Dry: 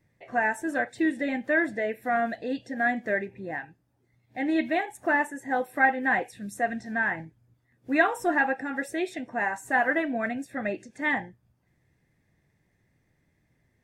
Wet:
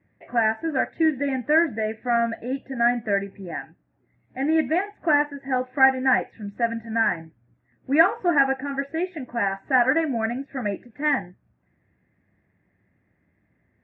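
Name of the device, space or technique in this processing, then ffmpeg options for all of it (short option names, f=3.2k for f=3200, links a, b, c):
bass cabinet: -af "highpass=70,equalizer=f=140:t=q:w=4:g=-9,equalizer=f=190:t=q:w=4:g=3,equalizer=f=460:t=q:w=4:g=-4,equalizer=f=890:t=q:w=4:g=-4,lowpass=f=2.2k:w=0.5412,lowpass=f=2.2k:w=1.3066,volume=4.5dB"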